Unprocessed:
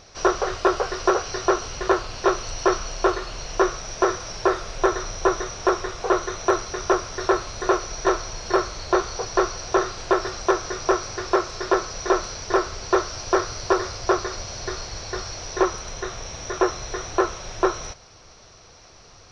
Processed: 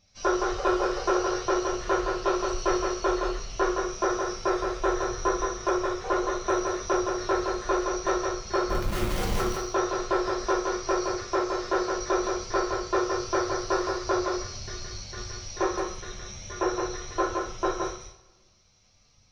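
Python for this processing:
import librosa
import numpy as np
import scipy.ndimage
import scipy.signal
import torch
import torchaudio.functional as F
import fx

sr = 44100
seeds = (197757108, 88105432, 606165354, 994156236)

p1 = fx.bin_expand(x, sr, power=1.5)
p2 = fx.schmitt(p1, sr, flips_db=-34.0, at=(8.69, 9.4))
p3 = p2 + fx.echo_single(p2, sr, ms=168, db=-4.0, dry=0)
p4 = fx.rev_double_slope(p3, sr, seeds[0], early_s=0.42, late_s=1.5, knee_db=-22, drr_db=-2.0)
y = p4 * librosa.db_to_amplitude(-7.0)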